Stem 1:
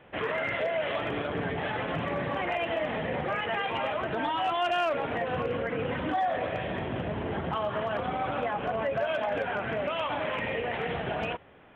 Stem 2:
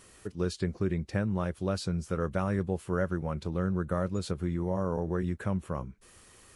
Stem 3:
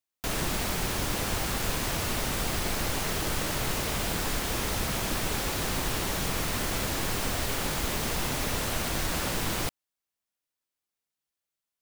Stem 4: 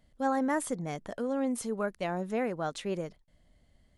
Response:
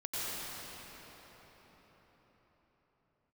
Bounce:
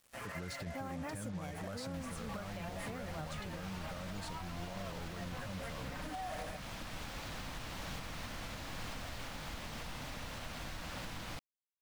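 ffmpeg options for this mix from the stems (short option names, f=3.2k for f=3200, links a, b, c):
-filter_complex "[0:a]lowpass=f=2.8k:w=0.5412,lowpass=f=2.8k:w=1.3066,asplit=2[a][b];[b]adelay=5.5,afreqshift=0.4[c];[a][c]amix=inputs=2:normalize=1,volume=-8.5dB[d];[1:a]volume=-2dB,asplit=2[e][f];[2:a]lowpass=5k,adelay=1700,volume=-10dB[g];[3:a]adelay=550,volume=-3.5dB[h];[f]apad=whole_len=518760[i];[d][i]sidechaingate=range=-33dB:threshold=-59dB:ratio=16:detection=peak[j];[j][e]amix=inputs=2:normalize=0,dynaudnorm=f=100:g=21:m=5dB,alimiter=level_in=5.5dB:limit=-24dB:level=0:latency=1:release=48,volume=-5.5dB,volume=0dB[k];[g][h]amix=inputs=2:normalize=0,acompressor=threshold=-36dB:ratio=2.5,volume=0dB[l];[k][l]amix=inputs=2:normalize=0,equalizer=f=390:w=3.5:g=-10.5,acrusher=bits=7:mix=0:aa=0.5,alimiter=level_in=9dB:limit=-24dB:level=0:latency=1:release=317,volume=-9dB"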